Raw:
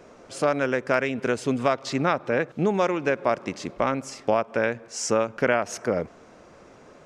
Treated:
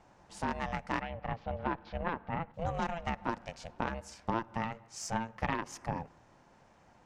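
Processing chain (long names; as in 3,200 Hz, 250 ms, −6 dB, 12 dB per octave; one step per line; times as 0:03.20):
ring modulation 340 Hz
tube saturation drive 11 dB, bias 0.65
0:01.01–0:02.54: Gaussian smoothing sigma 2.7 samples
on a send: convolution reverb RT60 0.80 s, pre-delay 6 ms, DRR 21 dB
on the sum: level −5.5 dB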